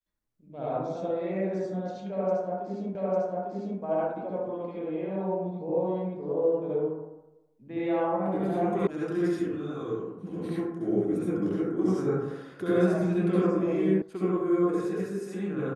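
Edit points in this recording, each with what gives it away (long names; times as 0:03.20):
0:02.95: the same again, the last 0.85 s
0:08.87: cut off before it has died away
0:14.02: cut off before it has died away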